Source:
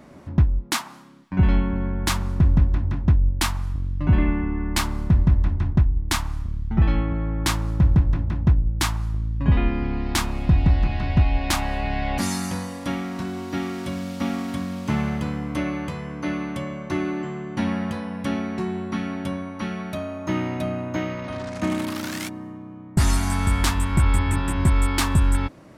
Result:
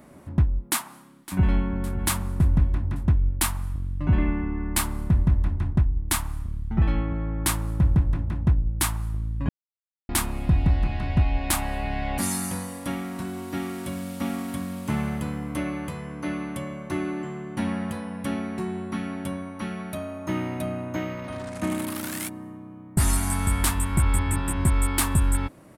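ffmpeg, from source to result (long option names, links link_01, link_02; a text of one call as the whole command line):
ffmpeg -i in.wav -filter_complex "[0:a]asplit=2[link_01][link_02];[link_02]afade=type=in:start_time=0.7:duration=0.01,afade=type=out:start_time=1.68:duration=0.01,aecho=0:1:560|1120|1680|2240|2800:0.16788|0.0839402|0.0419701|0.0209851|0.0104925[link_03];[link_01][link_03]amix=inputs=2:normalize=0,asplit=3[link_04][link_05][link_06];[link_04]atrim=end=9.49,asetpts=PTS-STARTPTS,afade=type=out:start_time=9.486:duration=0.004:curve=hsin[link_07];[link_05]atrim=start=9.49:end=10.09,asetpts=PTS-STARTPTS,volume=0[link_08];[link_06]atrim=start=10.09,asetpts=PTS-STARTPTS,afade=type=in:duration=0.004:curve=hsin[link_09];[link_07][link_08][link_09]concat=n=3:v=0:a=1,highshelf=frequency=7500:width_type=q:width=1.5:gain=8.5,volume=-3dB" out.wav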